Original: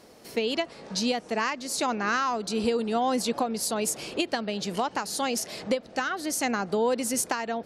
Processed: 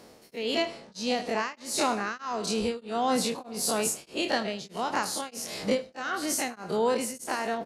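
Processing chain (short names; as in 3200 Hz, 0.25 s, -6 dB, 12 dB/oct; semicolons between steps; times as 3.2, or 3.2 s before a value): spectral dilation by 60 ms; feedback echo 77 ms, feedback 44%, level -15 dB; beating tremolo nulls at 1.6 Hz; gain -2.5 dB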